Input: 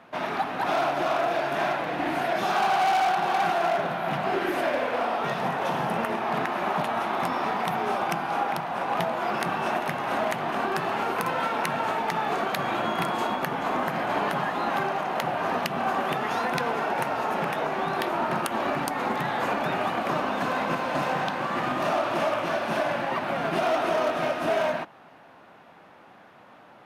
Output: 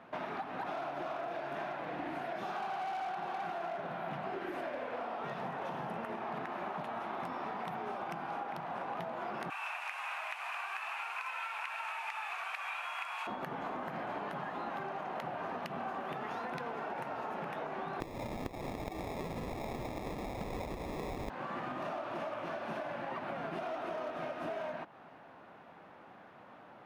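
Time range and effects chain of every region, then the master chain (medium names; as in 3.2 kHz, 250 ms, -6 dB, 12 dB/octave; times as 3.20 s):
9.50–13.27 s: one-bit delta coder 64 kbps, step -34.5 dBFS + high-pass 930 Hz 24 dB/octave + peaking EQ 2.5 kHz +14.5 dB 0.3 oct
18.00–21.30 s: high-pass 840 Hz + resonant high shelf 1.5 kHz +7 dB, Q 1.5 + sample-rate reducer 1.5 kHz
whole clip: treble shelf 3.8 kHz -10 dB; compression, threshold -34 dBFS; trim -3 dB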